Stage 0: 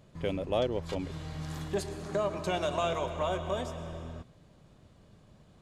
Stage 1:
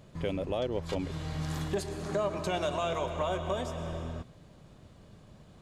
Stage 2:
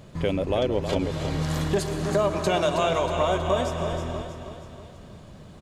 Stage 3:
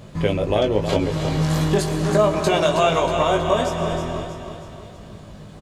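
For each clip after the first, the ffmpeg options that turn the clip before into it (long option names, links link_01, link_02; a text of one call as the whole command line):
ffmpeg -i in.wav -af "alimiter=level_in=1dB:limit=-24dB:level=0:latency=1:release=361,volume=-1dB,volume=4dB" out.wav
ffmpeg -i in.wav -af "aecho=1:1:319|638|957|1276|1595|1914:0.398|0.195|0.0956|0.0468|0.023|0.0112,volume=7.5dB" out.wav
ffmpeg -i in.wav -filter_complex "[0:a]asplit=2[link_01][link_02];[link_02]adelay=19,volume=-5dB[link_03];[link_01][link_03]amix=inputs=2:normalize=0,volume=4dB" out.wav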